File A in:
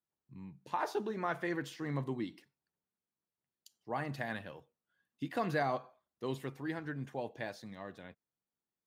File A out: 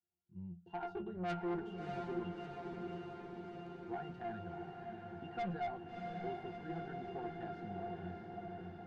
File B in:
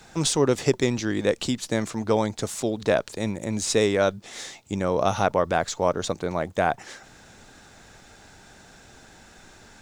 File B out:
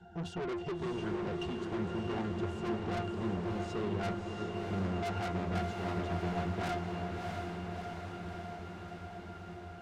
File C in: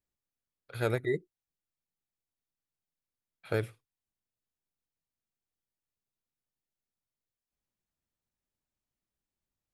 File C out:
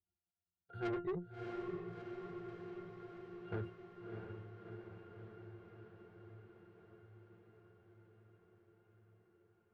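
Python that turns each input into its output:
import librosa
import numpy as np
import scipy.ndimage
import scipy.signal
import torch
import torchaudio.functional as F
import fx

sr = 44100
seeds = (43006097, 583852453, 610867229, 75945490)

p1 = fx.peak_eq(x, sr, hz=880.0, db=6.0, octaves=0.23)
p2 = fx.rider(p1, sr, range_db=4, speed_s=0.5)
p3 = p1 + (p2 * librosa.db_to_amplitude(0.5))
p4 = fx.octave_resonator(p3, sr, note='F', decay_s=0.21)
p5 = fx.tube_stage(p4, sr, drive_db=39.0, bias=0.25)
p6 = fx.echo_diffused(p5, sr, ms=658, feedback_pct=72, wet_db=-4)
y = p6 * librosa.db_to_amplitude(4.5)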